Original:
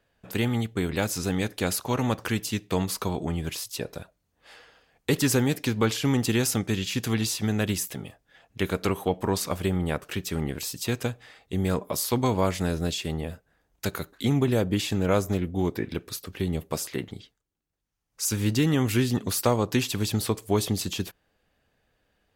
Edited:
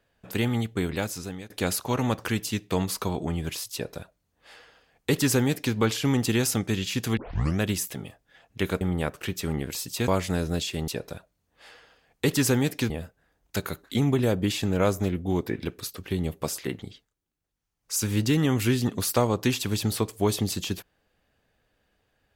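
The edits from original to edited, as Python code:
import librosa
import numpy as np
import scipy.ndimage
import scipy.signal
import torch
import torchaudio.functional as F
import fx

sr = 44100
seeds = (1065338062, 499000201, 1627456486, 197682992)

y = fx.edit(x, sr, fx.fade_out_to(start_s=0.82, length_s=0.68, floor_db=-19.5),
    fx.duplicate(start_s=3.73, length_s=2.02, to_s=13.19),
    fx.tape_start(start_s=7.17, length_s=0.43),
    fx.cut(start_s=8.81, length_s=0.88),
    fx.cut(start_s=10.96, length_s=1.43), tone=tone)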